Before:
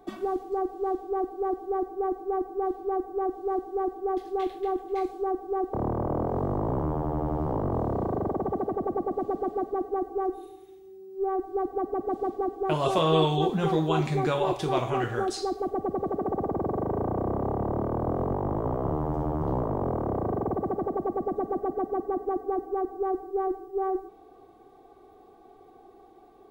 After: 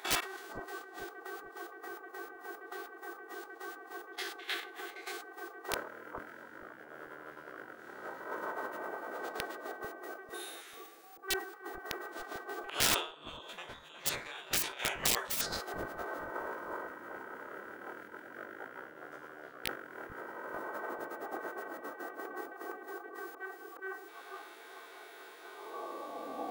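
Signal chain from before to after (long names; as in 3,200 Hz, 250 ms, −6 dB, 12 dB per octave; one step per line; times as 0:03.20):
spectrum averaged block by block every 50 ms
volume swells 451 ms
compressor whose output falls as the input rises −35 dBFS, ratio −0.5
high-pass filter sweep 1,400 Hz → 340 Hz, 0:25.40–0:26.29
wrap-around overflow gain 31.5 dB
on a send: bucket-brigade delay 444 ms, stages 2,048, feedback 36%, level −4 dB
on the sum: gate on every frequency bin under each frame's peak −10 dB weak
level that may fall only so fast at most 120 dB per second
level +12.5 dB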